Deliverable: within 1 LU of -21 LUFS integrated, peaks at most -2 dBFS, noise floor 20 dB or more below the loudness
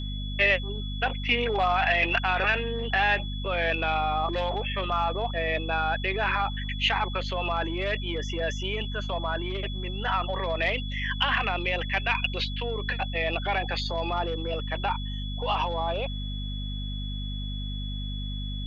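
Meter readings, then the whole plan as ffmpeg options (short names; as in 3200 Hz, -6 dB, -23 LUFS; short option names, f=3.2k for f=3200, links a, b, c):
hum 50 Hz; harmonics up to 250 Hz; hum level -30 dBFS; steady tone 3400 Hz; tone level -39 dBFS; loudness -27.5 LUFS; peak -11.0 dBFS; loudness target -21.0 LUFS
-> -af "bandreject=f=50:t=h:w=6,bandreject=f=100:t=h:w=6,bandreject=f=150:t=h:w=6,bandreject=f=200:t=h:w=6,bandreject=f=250:t=h:w=6"
-af "bandreject=f=3.4k:w=30"
-af "volume=6.5dB"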